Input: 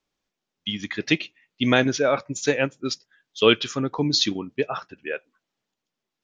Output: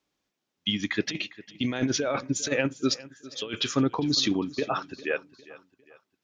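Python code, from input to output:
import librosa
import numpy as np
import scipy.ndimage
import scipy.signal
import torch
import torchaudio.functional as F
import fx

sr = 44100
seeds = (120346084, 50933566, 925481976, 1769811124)

y = scipy.signal.sosfilt(scipy.signal.butter(2, 46.0, 'highpass', fs=sr, output='sos'), x)
y = fx.peak_eq(y, sr, hz=290.0, db=3.5, octaves=0.38)
y = fx.over_compress(y, sr, threshold_db=-22.0, ratio=-0.5)
y = fx.echo_feedback(y, sr, ms=403, feedback_pct=41, wet_db=-19)
y = F.gain(torch.from_numpy(y), -2.0).numpy()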